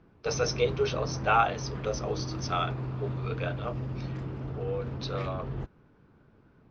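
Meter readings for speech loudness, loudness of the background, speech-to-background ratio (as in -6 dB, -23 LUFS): -32.0 LUFS, -36.0 LUFS, 4.0 dB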